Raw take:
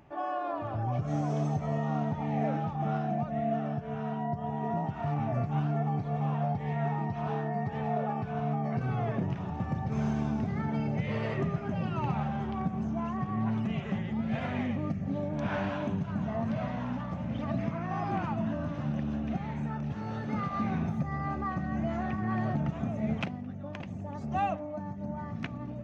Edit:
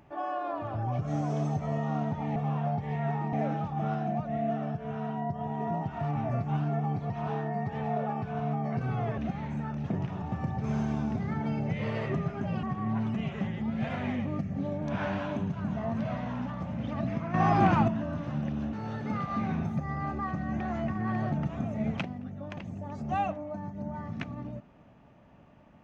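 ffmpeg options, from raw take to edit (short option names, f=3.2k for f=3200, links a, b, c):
-filter_complex "[0:a]asplit=12[a][b][c][d][e][f][g][h][i][j][k][l];[a]atrim=end=2.362[m];[b]atrim=start=6.128:end=7.102[n];[c]atrim=start=2.358:end=6.132[o];[d]atrim=start=7.098:end=9.182[p];[e]atrim=start=19.238:end=19.962[q];[f]atrim=start=9.178:end=11.912[r];[g]atrim=start=13.138:end=17.852[s];[h]atrim=start=17.848:end=18.392,asetpts=PTS-STARTPTS,volume=9dB[t];[i]atrim=start=18.388:end=19.242[u];[j]atrim=start=19.958:end=21.832[v];[k]atrim=start=21.828:end=22.112,asetpts=PTS-STARTPTS,areverse[w];[l]atrim=start=22.108[x];[m][n]acrossfade=d=0.004:c1=hsin:c2=hsin[y];[y][o]acrossfade=d=0.004:c1=hsin:c2=hsin[z];[z][p]acrossfade=d=0.004:c1=hsin:c2=hsin[aa];[aa][q]acrossfade=d=0.004:c1=hsin:c2=hsin[ab];[ab][r]acrossfade=d=0.004:c1=hsin:c2=hsin[ac];[ac][s]acrossfade=d=0.004:c1=hsin:c2=hsin[ad];[ad][t]acrossfade=d=0.004:c1=hsin:c2=hsin[ae];[ae][u]acrossfade=d=0.004:c1=hsin:c2=hsin[af];[af][v]acrossfade=d=0.004:c1=hsin:c2=hsin[ag];[ag][w]acrossfade=d=0.004:c1=hsin:c2=hsin[ah];[ah][x]acrossfade=d=0.004:c1=hsin:c2=hsin"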